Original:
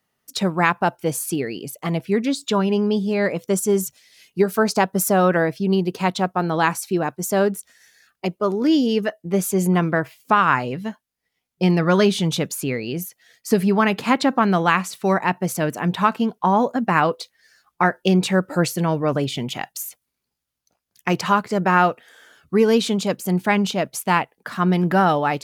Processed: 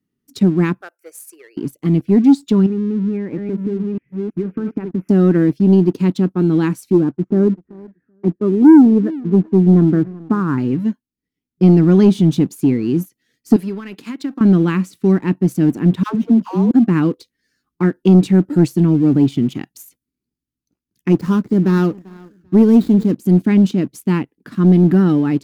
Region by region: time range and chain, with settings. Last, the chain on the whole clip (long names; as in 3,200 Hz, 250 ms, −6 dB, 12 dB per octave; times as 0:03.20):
0:00.81–0:01.57: high-pass filter 640 Hz 24 dB per octave + phaser with its sweep stopped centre 940 Hz, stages 6
0:02.66–0:05.09: delay that plays each chunk backwards 660 ms, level −8.5 dB + elliptic low-pass filter 2,500 Hz + downward compressor, threshold −25 dBFS
0:06.92–0:10.58: low-pass filter 1,500 Hz 24 dB per octave + repeating echo 383 ms, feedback 18%, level −22 dB
0:13.56–0:14.41: high-pass filter 1,200 Hz 6 dB per octave + downward compressor 3 to 1, threshold −25 dBFS
0:16.03–0:16.71: running median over 15 samples + high-pass filter 140 Hz 6 dB per octave + all-pass dispersion lows, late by 123 ms, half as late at 560 Hz
0:21.13–0:23.12: running median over 15 samples + high-shelf EQ 8,400 Hz +7.5 dB + repeating echo 392 ms, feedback 31%, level −22.5 dB
whole clip: low shelf with overshoot 450 Hz +13.5 dB, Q 3; leveller curve on the samples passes 1; level −10.5 dB